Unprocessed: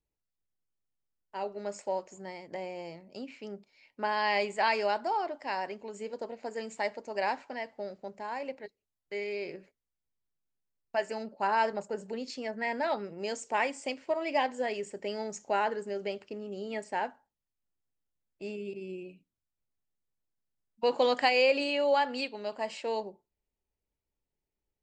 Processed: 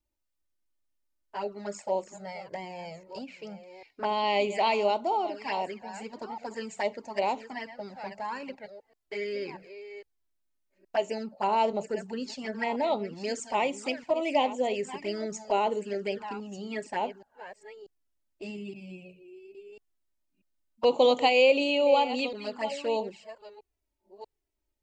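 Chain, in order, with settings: reverse delay 0.638 s, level -13 dB; envelope flanger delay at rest 3.3 ms, full sweep at -28.5 dBFS; gain +5.5 dB

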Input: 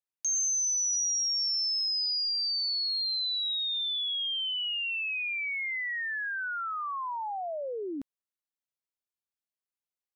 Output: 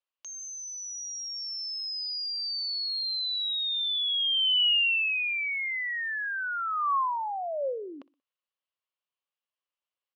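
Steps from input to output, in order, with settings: speaker cabinet 460–4600 Hz, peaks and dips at 540 Hz +8 dB, 1100 Hz +9 dB, 2900 Hz +9 dB; on a send: feedback echo 61 ms, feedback 40%, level -22 dB

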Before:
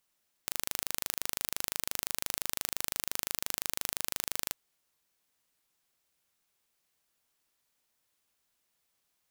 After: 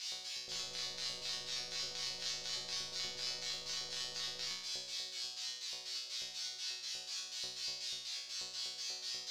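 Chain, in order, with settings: switching spikes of -21.5 dBFS; resonant high shelf 7700 Hz -7.5 dB, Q 1.5; LFO low-pass square 4.1 Hz 550–4500 Hz; bell 69 Hz +11.5 dB 1.8 oct; resonator bank B2 fifth, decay 0.76 s; de-hum 153.9 Hz, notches 36; gain +9 dB

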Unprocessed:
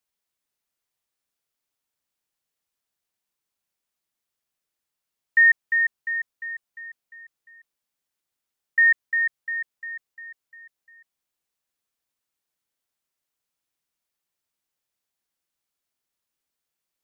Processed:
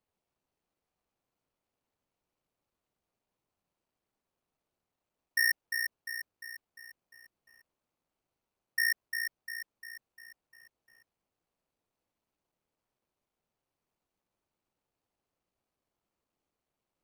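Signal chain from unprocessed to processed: median filter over 25 samples; gain +7 dB

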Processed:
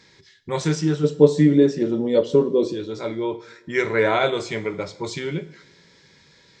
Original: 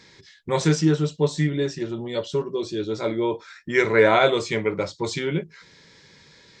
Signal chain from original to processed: 1.03–2.72 small resonant body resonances 270/470 Hz, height 15 dB -> 17 dB, ringing for 30 ms; on a send: reverb, pre-delay 3 ms, DRR 13 dB; on the sum: gain -2.5 dB

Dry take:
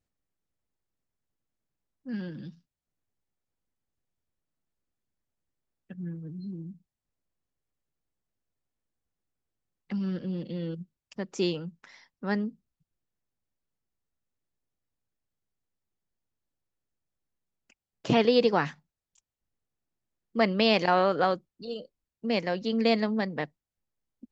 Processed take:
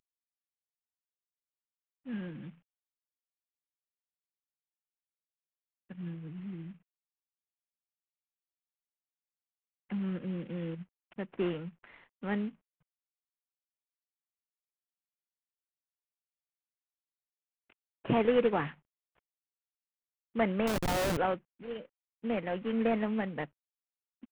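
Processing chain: CVSD 16 kbps; 20.67–21.17 Schmitt trigger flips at -27.5 dBFS; gain -3 dB

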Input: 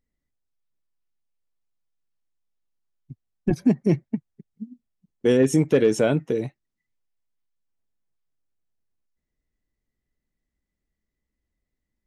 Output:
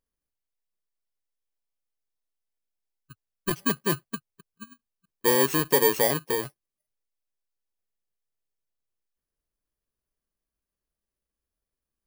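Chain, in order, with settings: FFT order left unsorted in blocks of 32 samples; resonant low shelf 340 Hz -6 dB, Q 1.5; gain -2.5 dB

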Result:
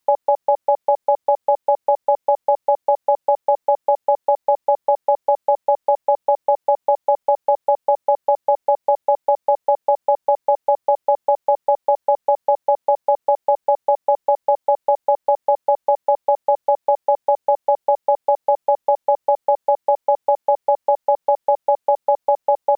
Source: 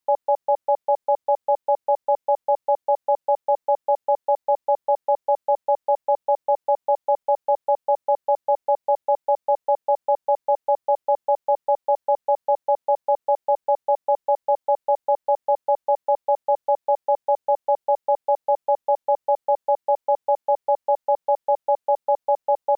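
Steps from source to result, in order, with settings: compressor, threshold -21 dBFS, peak gain reduction 6.5 dB; gain +8.5 dB

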